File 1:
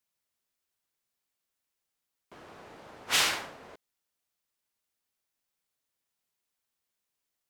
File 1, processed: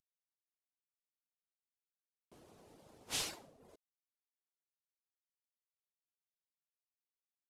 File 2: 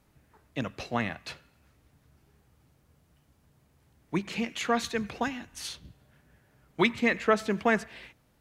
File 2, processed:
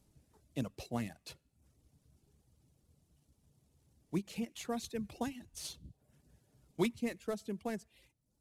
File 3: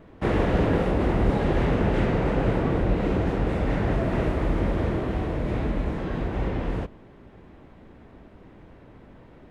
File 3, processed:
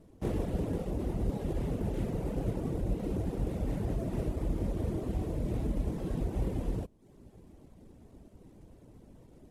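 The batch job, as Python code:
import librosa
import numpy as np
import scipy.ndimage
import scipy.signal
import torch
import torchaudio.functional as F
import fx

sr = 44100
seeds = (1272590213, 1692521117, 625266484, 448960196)

y = fx.cvsd(x, sr, bps=64000)
y = fx.dereverb_blind(y, sr, rt60_s=0.58)
y = fx.peak_eq(y, sr, hz=1600.0, db=-13.5, octaves=2.1)
y = fx.rider(y, sr, range_db=4, speed_s=0.5)
y = F.gain(torch.from_numpy(y), -6.0).numpy()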